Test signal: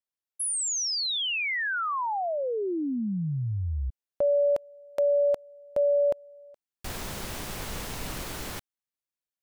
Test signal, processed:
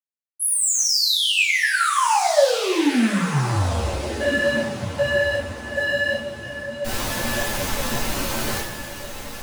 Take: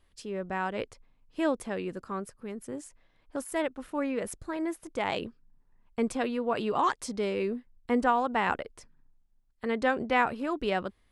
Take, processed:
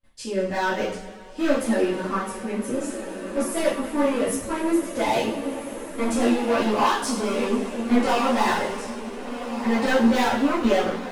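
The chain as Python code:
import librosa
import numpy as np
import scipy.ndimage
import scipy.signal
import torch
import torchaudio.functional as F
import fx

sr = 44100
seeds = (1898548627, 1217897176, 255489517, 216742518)

y = fx.gate_hold(x, sr, open_db=-55.0, close_db=-61.0, hold_ms=14.0, range_db=-21, attack_ms=2.2, release_ms=23.0)
y = np.clip(10.0 ** (29.5 / 20.0) * y, -1.0, 1.0) / 10.0 ** (29.5 / 20.0)
y = fx.echo_diffused(y, sr, ms=1461, feedback_pct=40, wet_db=-9.5)
y = fx.rev_double_slope(y, sr, seeds[0], early_s=0.5, late_s=3.1, knee_db=-18, drr_db=-8.0)
y = fx.ensemble(y, sr)
y = y * librosa.db_to_amplitude(6.0)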